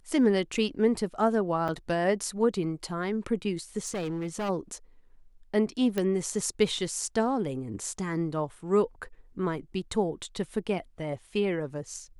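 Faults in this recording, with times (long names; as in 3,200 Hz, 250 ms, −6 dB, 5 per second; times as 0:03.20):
0:01.68–0:01.69: drop-out 6 ms
0:03.85–0:04.50: clipping −28.5 dBFS
0:05.98: click −15 dBFS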